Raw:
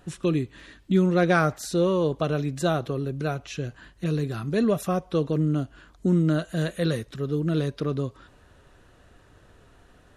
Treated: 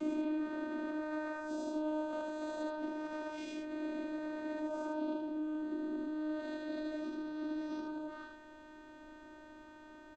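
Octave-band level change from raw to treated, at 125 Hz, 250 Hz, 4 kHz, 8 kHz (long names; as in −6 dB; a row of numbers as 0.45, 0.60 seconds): below −40 dB, −11.0 dB, −16.5 dB, below −15 dB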